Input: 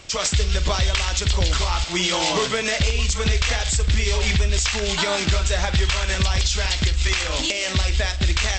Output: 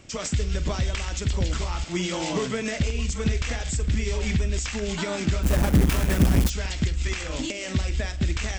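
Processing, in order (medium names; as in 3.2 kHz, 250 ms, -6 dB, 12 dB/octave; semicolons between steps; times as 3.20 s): 5.43–6.50 s: square wave that keeps the level; graphic EQ 125/250/1000/4000 Hz +5/+9/-3/-7 dB; trim -6.5 dB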